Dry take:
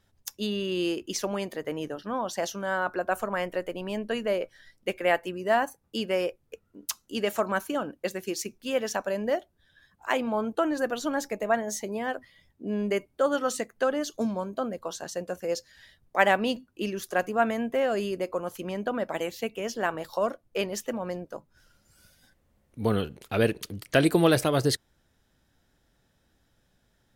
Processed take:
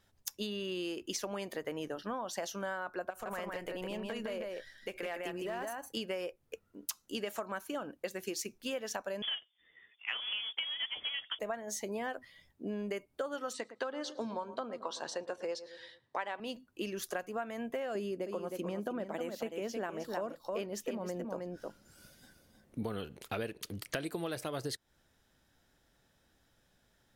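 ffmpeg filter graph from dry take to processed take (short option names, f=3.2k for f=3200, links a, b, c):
-filter_complex "[0:a]asettb=1/sr,asplit=3[a][b][c];[a]atrim=end=3.104[d];[b]atrim=start=3.1:end=5.97,asetpts=PTS-STARTPTS,afade=t=in:d=0.004:c=qsin,afade=t=out:st=2.866:d=0.004:c=qsin,acompressor=threshold=-33dB:ratio=6:attack=3.2:release=140:knee=1:detection=peak,aecho=1:1:158:0.668,atrim=end_sample=126567,aeval=exprs='clip(val(0),-1,0.0316)':c=same[e];[c]atrim=start=5.966[f];[d][e]acrossfade=d=0.004:c1=hsin:c2=qsin[g];[g][f]acrossfade=d=0.004:c1=qsin:c2=hsin,asettb=1/sr,asplit=3[h][i][j];[h]atrim=end=9.224[k];[i]atrim=start=9.22:end=11.39,asetpts=PTS-STARTPTS,afade=t=in:d=0.004:c=qsin,afade=t=out:st=2.166:d=0.004:c=qsin,lowshelf=f=160:g=-9,acrusher=bits=2:mode=log:mix=0:aa=0.000001,lowpass=f=3.1k:t=q:w=0.5098,lowpass=f=3.1k:t=q:w=0.6013,lowpass=f=3.1k:t=q:w=0.9,lowpass=f=3.1k:t=q:w=2.563,afreqshift=-3600[l];[j]atrim=start=11.386[m];[k][l]acrossfade=d=0.004:c1=hsin:c2=qsin[n];[n][m]acrossfade=d=0.004:c1=qsin:c2=hsin,asettb=1/sr,asplit=3[o][p][q];[o]atrim=end=13.534[r];[p]atrim=start=13.53:end=16.4,asetpts=PTS-STARTPTS,afade=t=in:d=0.004:c=qsin,afade=t=out:st=2.866:d=0.004:c=qsin,highpass=f=110:w=0.5412,highpass=f=110:w=1.3066,equalizer=f=180:t=q:w=4:g=-10,equalizer=f=660:t=q:w=4:g=-3,equalizer=f=960:t=q:w=4:g=7,equalizer=f=3.9k:t=q:w=4:g=5,equalizer=f=6.7k:t=q:w=4:g=-8,lowpass=f=7.9k:w=0.5412,lowpass=f=7.9k:w=1.3066,asplit=2[s][t];[t]adelay=111,lowpass=f=1.2k:p=1,volume=-15.5dB,asplit=2[u][v];[v]adelay=111,lowpass=f=1.2k:p=1,volume=0.49,asplit=2[w][x];[x]adelay=111,lowpass=f=1.2k:p=1,volume=0.49,asplit=2[y][z];[z]adelay=111,lowpass=f=1.2k:p=1,volume=0.49[aa];[s][u][w][y][aa]amix=inputs=5:normalize=0,atrim=end_sample=126567[ab];[q]atrim=start=16.396[ac];[r][ab]acrossfade=d=0.004:c1=hsin:c2=qsin[ad];[ad][ac]acrossfade=d=0.004:c1=qsin:c2=hsin,asettb=1/sr,asplit=3[ae][af][ag];[ae]atrim=end=17.954[ah];[af]atrim=start=17.95:end=22.83,asetpts=PTS-STARTPTS,afade=t=in:d=0.004:c=qsin,afade=t=out:st=4.876:d=0.004:c=qsin,equalizer=f=260:t=o:w=2.3:g=9,aecho=1:1:313:0.398,atrim=end_sample=215208[ai];[ag]atrim=start=22.826[aj];[ah][ai]acrossfade=d=0.004:c1=hsin:c2=qsin[ak];[ak][aj]acrossfade=d=0.004:c1=qsin:c2=hsin,lowshelf=f=320:g=-5,acompressor=threshold=-34dB:ratio=12"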